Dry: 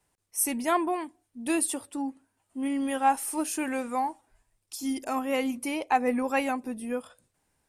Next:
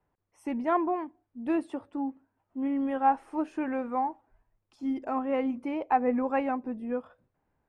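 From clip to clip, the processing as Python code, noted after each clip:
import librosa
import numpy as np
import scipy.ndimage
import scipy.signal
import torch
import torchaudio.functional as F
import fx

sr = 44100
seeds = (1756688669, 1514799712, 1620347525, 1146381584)

y = scipy.signal.sosfilt(scipy.signal.butter(2, 1400.0, 'lowpass', fs=sr, output='sos'), x)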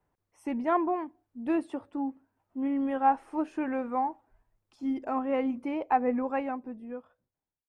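y = fx.fade_out_tail(x, sr, length_s=1.82)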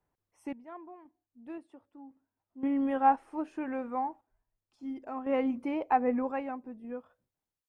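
y = fx.tremolo_random(x, sr, seeds[0], hz=1.9, depth_pct=90)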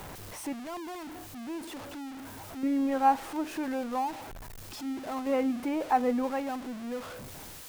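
y = x + 0.5 * 10.0 ** (-36.5 / 20.0) * np.sign(x)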